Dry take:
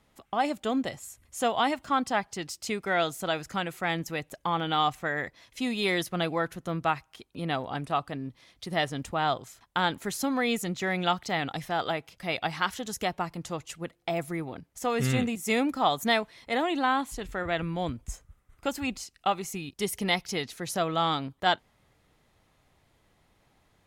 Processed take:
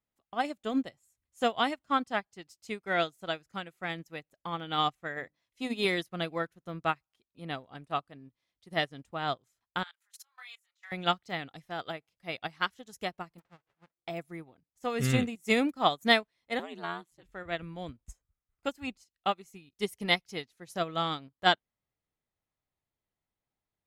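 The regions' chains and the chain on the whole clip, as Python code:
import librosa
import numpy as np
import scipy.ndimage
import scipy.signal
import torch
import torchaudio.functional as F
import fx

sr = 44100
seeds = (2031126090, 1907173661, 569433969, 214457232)

y = fx.chain(x, sr, fx.hum_notches(base_hz=50, count=6),
    fx.dynamic_eq(hz=590.0, q=0.77, threshold_db=-46.0, ratio=4.0, max_db=4), at=(5.16, 5.85))
y = fx.chain(y, sr, fx.cheby2_highpass(hz=240.0, order=4, stop_db=70),
    fx.doubler(ms=24.0, db=-3),
    fx.level_steps(step_db=17), at=(9.83, 10.92))
y = fx.envelope_flatten(y, sr, power=0.1, at=(13.38, 13.96), fade=0.02)
y = fx.lowpass(y, sr, hz=1600.0, slope=12, at=(13.38, 13.96), fade=0.02)
y = fx.peak_eq(y, sr, hz=61.0, db=-5.0, octaves=2.0, at=(13.38, 13.96), fade=0.02)
y = fx.chain(y, sr, fx.highpass(hz=140.0, slope=6),
    fx.ring_mod(carrier_hz=85.0), at=(16.59, 17.23))
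y = fx.dynamic_eq(y, sr, hz=870.0, q=2.7, threshold_db=-40.0, ratio=4.0, max_db=-5)
y = fx.upward_expand(y, sr, threshold_db=-42.0, expansion=2.5)
y = y * librosa.db_to_amplitude(4.0)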